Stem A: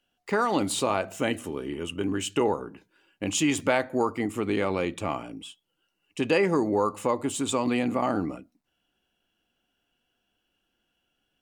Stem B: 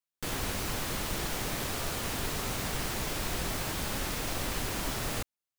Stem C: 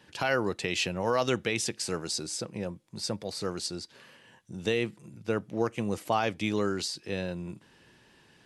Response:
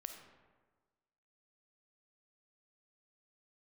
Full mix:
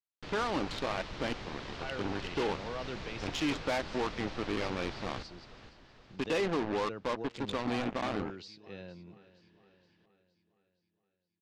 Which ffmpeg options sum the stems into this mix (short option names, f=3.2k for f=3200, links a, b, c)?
-filter_complex "[0:a]acrusher=bits=3:mix=0:aa=0.5,volume=-3dB[a];[1:a]volume=-8.5dB,asplit=2[b][c];[c]volume=-11.5dB[d];[2:a]adelay=1600,volume=-13dB,asplit=2[e][f];[f]volume=-17dB[g];[d][g]amix=inputs=2:normalize=0,aecho=0:1:467|934|1401|1868|2335|2802|3269|3736:1|0.52|0.27|0.141|0.0731|0.038|0.0198|0.0103[h];[a][b][e][h]amix=inputs=4:normalize=0,lowpass=f=4.8k:w=0.5412,lowpass=f=4.8k:w=1.3066,asoftclip=type=tanh:threshold=-26dB"